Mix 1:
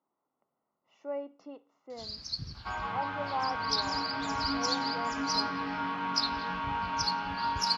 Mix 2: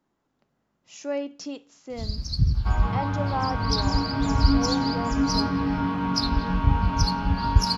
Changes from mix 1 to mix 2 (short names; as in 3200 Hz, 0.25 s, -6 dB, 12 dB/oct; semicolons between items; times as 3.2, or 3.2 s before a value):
speech: remove polynomial smoothing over 65 samples; master: remove band-pass 2200 Hz, Q 0.52